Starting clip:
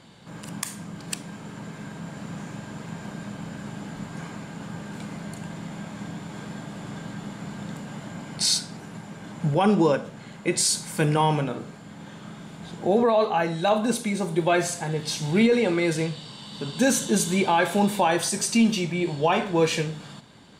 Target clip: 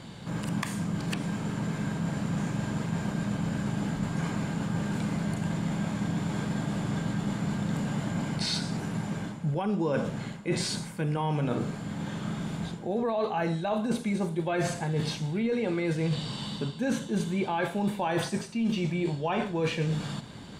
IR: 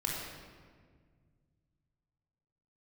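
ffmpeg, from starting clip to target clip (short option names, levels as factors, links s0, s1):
-filter_complex "[0:a]acrossover=split=3400[s0][s1];[s1]acompressor=threshold=0.00708:ratio=4:attack=1:release=60[s2];[s0][s2]amix=inputs=2:normalize=0,lowshelf=f=200:g=7.5,areverse,acompressor=threshold=0.0355:ratio=16,areverse,volume=1.58"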